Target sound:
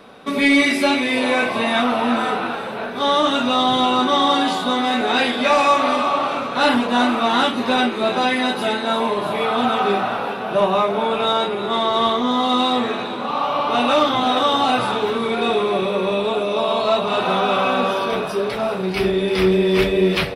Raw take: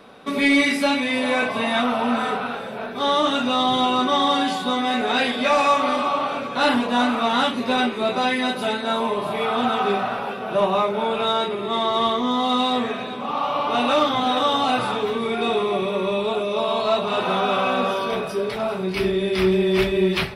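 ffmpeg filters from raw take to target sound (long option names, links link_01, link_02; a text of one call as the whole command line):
ffmpeg -i in.wav -filter_complex "[0:a]asplit=7[link_01][link_02][link_03][link_04][link_05][link_06][link_07];[link_02]adelay=340,afreqshift=94,volume=-14.5dB[link_08];[link_03]adelay=680,afreqshift=188,volume=-19.5dB[link_09];[link_04]adelay=1020,afreqshift=282,volume=-24.6dB[link_10];[link_05]adelay=1360,afreqshift=376,volume=-29.6dB[link_11];[link_06]adelay=1700,afreqshift=470,volume=-34.6dB[link_12];[link_07]adelay=2040,afreqshift=564,volume=-39.7dB[link_13];[link_01][link_08][link_09][link_10][link_11][link_12][link_13]amix=inputs=7:normalize=0,volume=2.5dB" out.wav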